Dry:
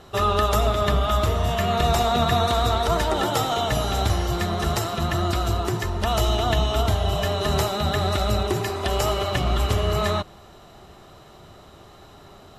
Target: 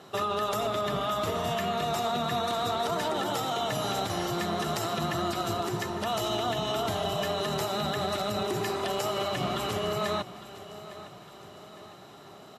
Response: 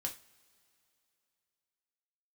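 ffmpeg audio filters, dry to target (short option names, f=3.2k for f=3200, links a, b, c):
-filter_complex "[0:a]highpass=f=130:w=0.5412,highpass=f=130:w=1.3066,alimiter=limit=-18.5dB:level=0:latency=1:release=75,asplit=2[a][b];[b]aecho=0:1:857|1714|2571|3428:0.158|0.0792|0.0396|0.0198[c];[a][c]amix=inputs=2:normalize=0,volume=-2dB"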